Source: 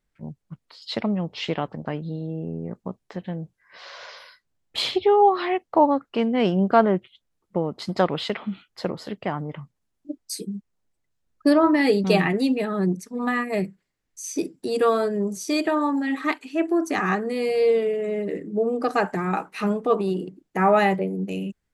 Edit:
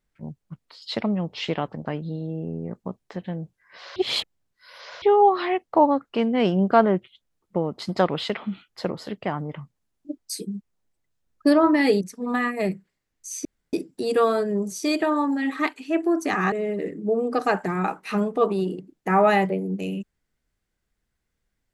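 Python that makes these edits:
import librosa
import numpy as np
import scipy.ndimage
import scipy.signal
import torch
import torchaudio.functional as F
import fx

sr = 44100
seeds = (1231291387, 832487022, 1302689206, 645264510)

y = fx.edit(x, sr, fx.reverse_span(start_s=3.96, length_s=1.06),
    fx.cut(start_s=12.01, length_s=0.93),
    fx.insert_room_tone(at_s=14.38, length_s=0.28),
    fx.cut(start_s=17.17, length_s=0.84), tone=tone)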